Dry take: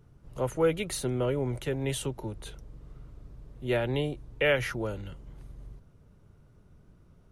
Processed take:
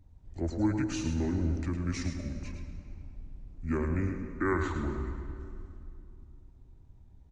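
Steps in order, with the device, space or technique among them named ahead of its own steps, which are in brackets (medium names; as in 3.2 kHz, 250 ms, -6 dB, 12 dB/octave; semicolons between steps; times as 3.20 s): monster voice (pitch shift -7.5 st; bass shelf 170 Hz +7.5 dB; delay 107 ms -8 dB; reverberation RT60 2.6 s, pre-delay 97 ms, DRR 8.5 dB); trim -5.5 dB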